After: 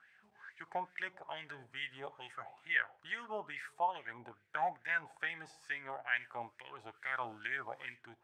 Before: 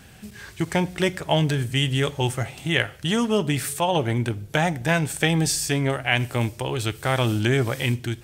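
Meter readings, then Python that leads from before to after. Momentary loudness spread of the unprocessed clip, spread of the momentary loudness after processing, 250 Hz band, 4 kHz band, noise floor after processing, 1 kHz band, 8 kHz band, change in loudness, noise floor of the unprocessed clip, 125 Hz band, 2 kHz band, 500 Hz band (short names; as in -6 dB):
5 LU, 14 LU, -33.0 dB, -23.0 dB, -71 dBFS, -11.0 dB, under -35 dB, -16.5 dB, -46 dBFS, -38.5 dB, -10.0 dB, -21.5 dB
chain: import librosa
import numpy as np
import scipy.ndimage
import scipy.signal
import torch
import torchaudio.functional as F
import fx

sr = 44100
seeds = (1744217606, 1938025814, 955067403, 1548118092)

y = fx.wah_lfo(x, sr, hz=2.3, low_hz=770.0, high_hz=2000.0, q=6.1)
y = y * 10.0 ** (-4.0 / 20.0)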